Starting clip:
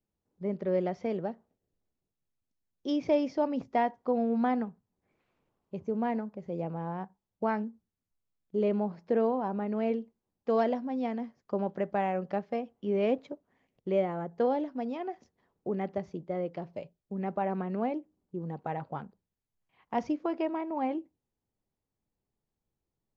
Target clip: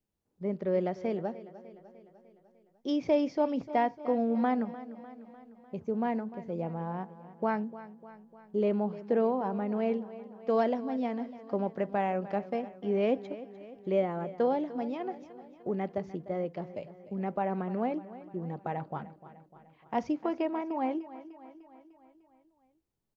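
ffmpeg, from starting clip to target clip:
-af "aecho=1:1:300|600|900|1200|1500|1800:0.158|0.0919|0.0533|0.0309|0.0179|0.0104"

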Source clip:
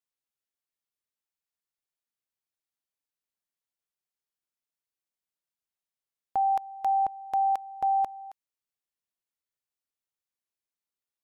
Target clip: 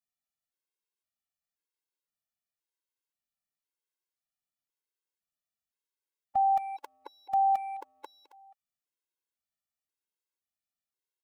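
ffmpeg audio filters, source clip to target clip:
-filter_complex "[0:a]asplit=2[s0][s1];[s1]adelay=210,highpass=300,lowpass=3400,asoftclip=type=hard:threshold=0.0316,volume=0.224[s2];[s0][s2]amix=inputs=2:normalize=0,afftfilt=real='re*gt(sin(2*PI*0.96*pts/sr)*(1-2*mod(floor(b*sr/1024/280),2)),0)':imag='im*gt(sin(2*PI*0.96*pts/sr)*(1-2*mod(floor(b*sr/1024/280),2)),0)':win_size=1024:overlap=0.75"

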